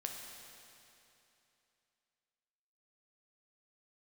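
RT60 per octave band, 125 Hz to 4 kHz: 2.9, 2.9, 2.9, 2.9, 2.9, 2.8 seconds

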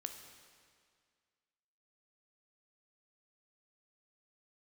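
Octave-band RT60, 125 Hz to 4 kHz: 2.0, 2.0, 2.0, 2.0, 2.0, 1.9 seconds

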